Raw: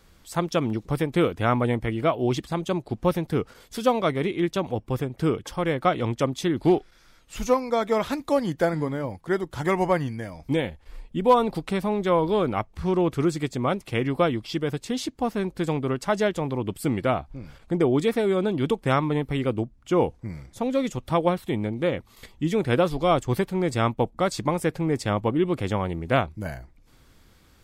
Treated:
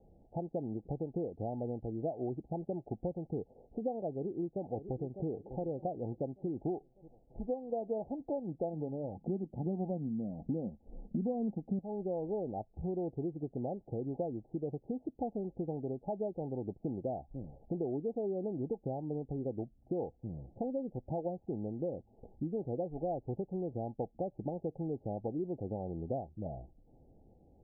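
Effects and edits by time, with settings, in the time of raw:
0:04.16–0:05.27: delay throw 600 ms, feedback 45%, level −15.5 dB
0:09.16–0:11.79: hollow resonant body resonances 210/3,600 Hz, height 17 dB
whole clip: downward compressor 5 to 1, threshold −32 dBFS; Chebyshev low-pass filter 830 Hz, order 8; low-shelf EQ 170 Hz −6.5 dB

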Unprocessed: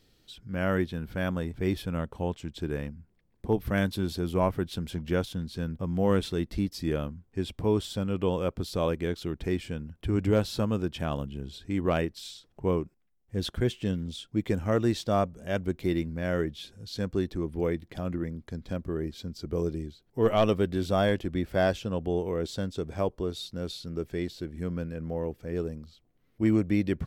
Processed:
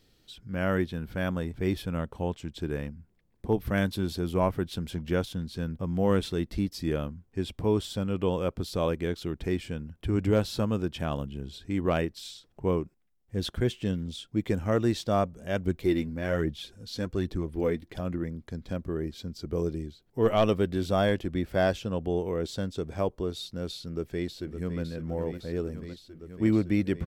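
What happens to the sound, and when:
0:15.65–0:18.01: phase shifter 1.2 Hz, delay 4.8 ms, feedback 41%
0:23.72–0:24.81: delay throw 560 ms, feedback 85%, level −9.5 dB

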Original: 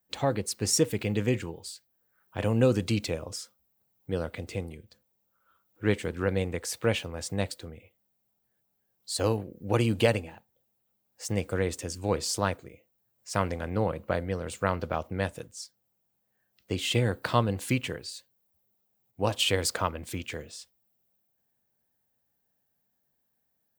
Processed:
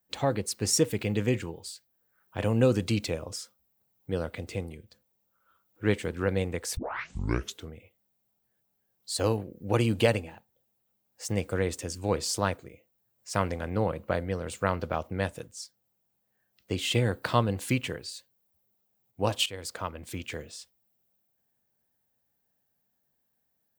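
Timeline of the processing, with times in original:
0:06.77: tape start 0.94 s
0:19.46–0:20.35: fade in, from −17.5 dB

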